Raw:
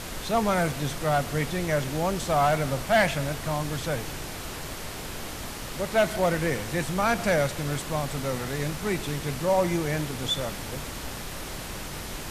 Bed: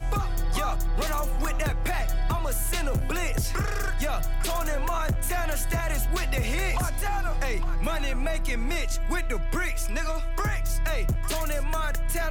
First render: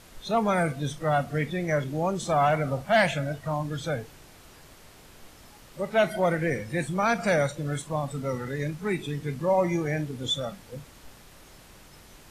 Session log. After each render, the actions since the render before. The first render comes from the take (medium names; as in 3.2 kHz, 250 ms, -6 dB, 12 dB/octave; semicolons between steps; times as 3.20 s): noise print and reduce 15 dB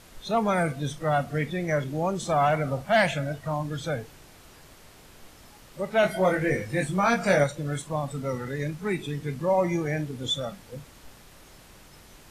6.01–7.44 s: doubling 21 ms -2.5 dB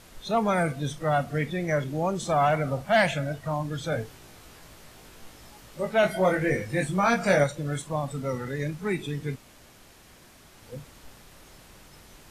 3.90–5.93 s: doubling 18 ms -3.5 dB; 9.36–10.62 s: room tone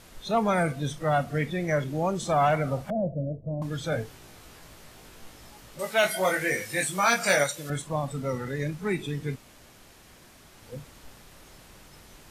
2.90–3.62 s: elliptic low-pass 570 Hz, stop band 80 dB; 5.79–7.70 s: tilt EQ +3.5 dB/octave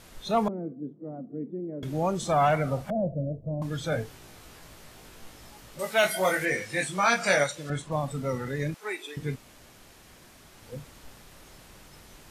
0.48–1.83 s: Butterworth band-pass 290 Hz, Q 1.6; 6.45–7.92 s: distance through air 52 m; 8.74–9.17 s: Bessel high-pass 570 Hz, order 6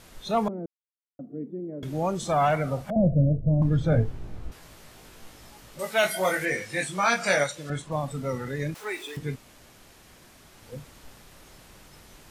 0.66–1.19 s: mute; 2.96–4.52 s: tilt EQ -4 dB/octave; 8.75–9.19 s: jump at every zero crossing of -43 dBFS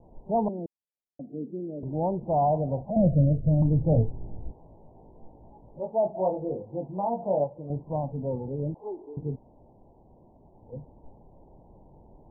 steep low-pass 950 Hz 96 dB/octave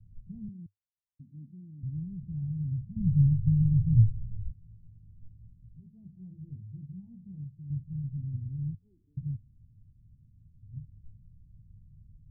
inverse Chebyshev low-pass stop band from 530 Hz, stop band 60 dB; peaking EQ 100 Hz +8.5 dB 0.44 oct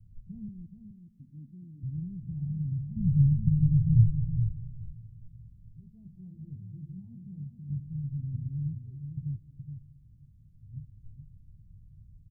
delay 421 ms -7.5 dB; plate-style reverb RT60 3.1 s, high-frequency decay 0.85×, pre-delay 100 ms, DRR 16 dB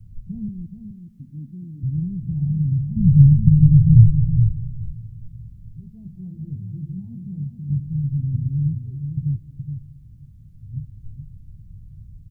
trim +11.5 dB; peak limiter -1 dBFS, peak gain reduction 2 dB